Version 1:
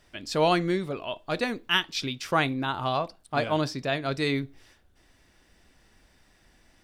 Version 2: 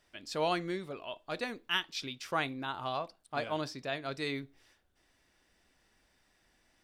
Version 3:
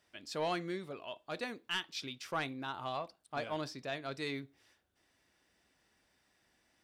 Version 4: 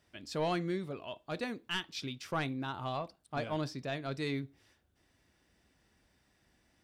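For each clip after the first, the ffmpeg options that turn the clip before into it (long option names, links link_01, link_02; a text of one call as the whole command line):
ffmpeg -i in.wav -af "lowshelf=frequency=240:gain=-7,volume=-7.5dB" out.wav
ffmpeg -i in.wav -af "highpass=70,asoftclip=type=tanh:threshold=-23dB,volume=-2.5dB" out.wav
ffmpeg -i in.wav -af "lowshelf=frequency=250:gain=11.5" out.wav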